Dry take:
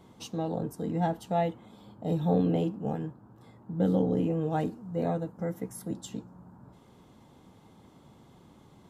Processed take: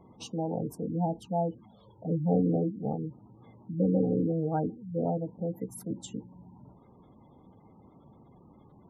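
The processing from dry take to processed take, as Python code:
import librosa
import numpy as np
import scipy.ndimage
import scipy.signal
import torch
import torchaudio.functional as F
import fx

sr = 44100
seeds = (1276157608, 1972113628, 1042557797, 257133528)

y = fx.env_flanger(x, sr, rest_ms=2.7, full_db=-25.5, at=(0.86, 2.32))
y = fx.spec_gate(y, sr, threshold_db=-20, keep='strong')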